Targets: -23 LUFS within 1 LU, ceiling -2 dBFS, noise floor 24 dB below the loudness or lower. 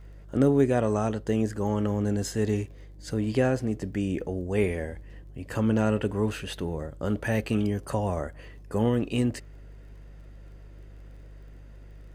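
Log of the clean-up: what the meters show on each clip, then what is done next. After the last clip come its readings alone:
ticks 27/s; hum 50 Hz; harmonics up to 150 Hz; hum level -44 dBFS; loudness -27.5 LUFS; peak -10.0 dBFS; loudness target -23.0 LUFS
-> de-click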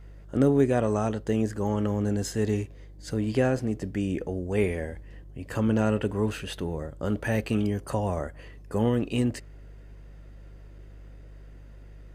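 ticks 0/s; hum 50 Hz; harmonics up to 150 Hz; hum level -44 dBFS
-> de-hum 50 Hz, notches 3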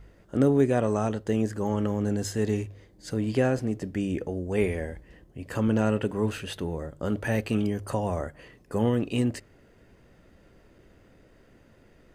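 hum none; loudness -28.0 LUFS; peak -10.0 dBFS; loudness target -23.0 LUFS
-> gain +5 dB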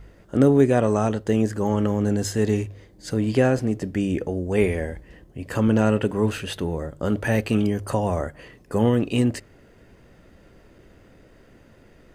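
loudness -23.0 LUFS; peak -5.0 dBFS; noise floor -53 dBFS

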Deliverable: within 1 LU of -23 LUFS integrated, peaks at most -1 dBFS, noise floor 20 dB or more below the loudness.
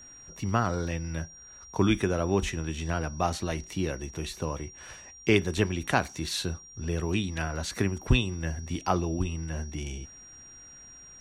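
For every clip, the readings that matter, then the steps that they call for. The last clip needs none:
steady tone 5700 Hz; tone level -47 dBFS; loudness -30.0 LUFS; peak -8.5 dBFS; loudness target -23.0 LUFS
-> notch 5700 Hz, Q 30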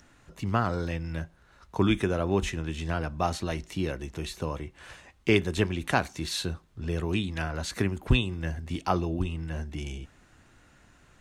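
steady tone none; loudness -30.0 LUFS; peak -8.5 dBFS; loudness target -23.0 LUFS
-> gain +7 dB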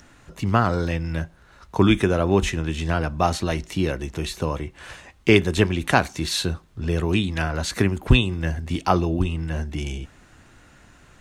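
loudness -23.0 LUFS; peak -1.5 dBFS; noise floor -53 dBFS

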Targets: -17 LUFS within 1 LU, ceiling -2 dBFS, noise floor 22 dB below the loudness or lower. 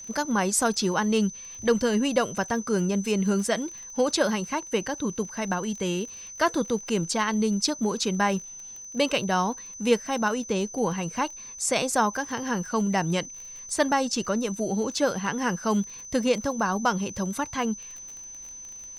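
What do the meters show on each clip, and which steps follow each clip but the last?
ticks 27/s; steady tone 6100 Hz; tone level -39 dBFS; loudness -26.5 LUFS; peak -8.0 dBFS; loudness target -17.0 LUFS
-> de-click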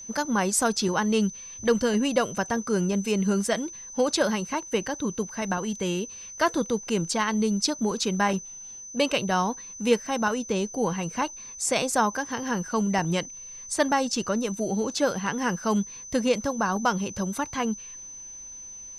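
ticks 0.053/s; steady tone 6100 Hz; tone level -39 dBFS
-> notch 6100 Hz, Q 30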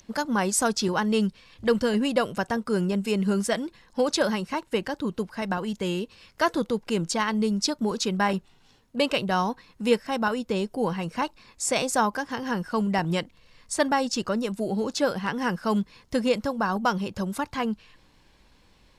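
steady tone none; loudness -26.5 LUFS; peak -8.0 dBFS; loudness target -17.0 LUFS
-> gain +9.5 dB; limiter -2 dBFS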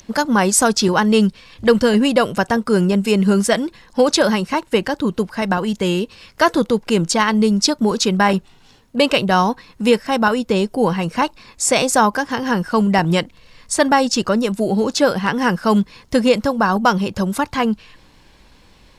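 loudness -17.5 LUFS; peak -2.0 dBFS; noise floor -50 dBFS

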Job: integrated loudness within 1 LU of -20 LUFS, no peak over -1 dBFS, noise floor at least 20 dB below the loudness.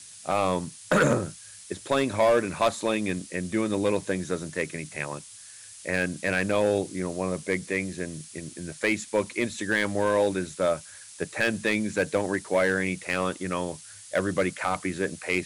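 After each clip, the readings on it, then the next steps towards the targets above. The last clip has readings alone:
clipped 0.8%; flat tops at -15.5 dBFS; noise floor -46 dBFS; noise floor target -47 dBFS; loudness -27.0 LUFS; peak -15.5 dBFS; loudness target -20.0 LUFS
-> clip repair -15.5 dBFS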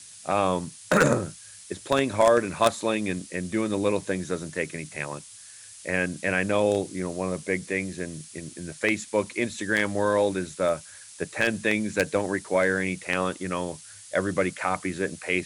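clipped 0.0%; noise floor -46 dBFS; noise floor target -47 dBFS
-> denoiser 6 dB, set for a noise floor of -46 dBFS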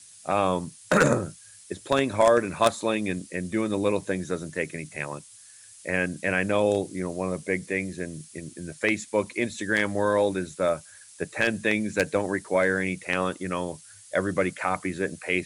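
noise floor -50 dBFS; loudness -26.5 LUFS; peak -6.5 dBFS; loudness target -20.0 LUFS
-> gain +6.5 dB; limiter -1 dBFS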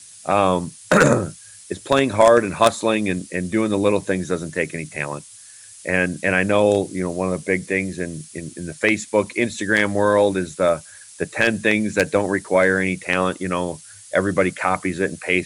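loudness -20.0 LUFS; peak -1.0 dBFS; noise floor -43 dBFS

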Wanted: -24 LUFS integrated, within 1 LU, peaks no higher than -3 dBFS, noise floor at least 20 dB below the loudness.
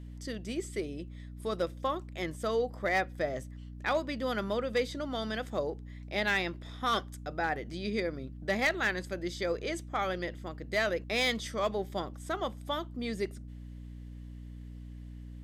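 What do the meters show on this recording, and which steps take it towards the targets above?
clipped 0.3%; flat tops at -21.5 dBFS; hum 60 Hz; harmonics up to 300 Hz; hum level -42 dBFS; loudness -33.5 LUFS; peak -21.5 dBFS; loudness target -24.0 LUFS
-> clip repair -21.5 dBFS; de-hum 60 Hz, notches 5; gain +9.5 dB

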